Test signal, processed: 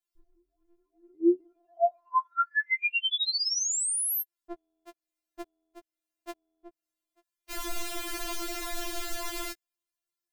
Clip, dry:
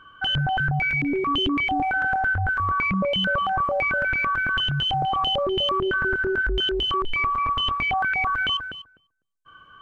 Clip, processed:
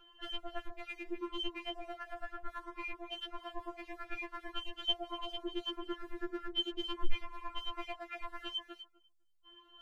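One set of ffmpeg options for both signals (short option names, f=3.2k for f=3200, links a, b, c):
-af "acompressor=threshold=-25dB:ratio=6,afftfilt=real='re*4*eq(mod(b,16),0)':imag='im*4*eq(mod(b,16),0)':win_size=2048:overlap=0.75,volume=-1dB"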